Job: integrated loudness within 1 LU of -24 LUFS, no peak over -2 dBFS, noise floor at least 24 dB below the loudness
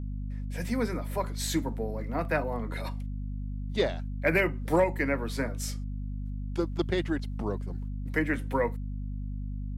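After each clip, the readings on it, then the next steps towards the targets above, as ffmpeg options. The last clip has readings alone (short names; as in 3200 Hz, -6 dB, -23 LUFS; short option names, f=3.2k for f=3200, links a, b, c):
hum 50 Hz; harmonics up to 250 Hz; hum level -32 dBFS; loudness -31.5 LUFS; peak -14.0 dBFS; loudness target -24.0 LUFS
-> -af "bandreject=f=50:t=h:w=6,bandreject=f=100:t=h:w=6,bandreject=f=150:t=h:w=6,bandreject=f=200:t=h:w=6,bandreject=f=250:t=h:w=6"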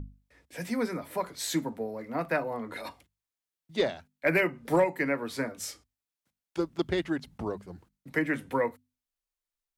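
hum none; loudness -31.5 LUFS; peak -14.5 dBFS; loudness target -24.0 LUFS
-> -af "volume=7.5dB"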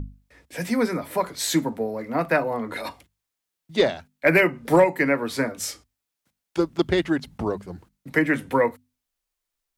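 loudness -24.0 LUFS; peak -7.0 dBFS; noise floor -84 dBFS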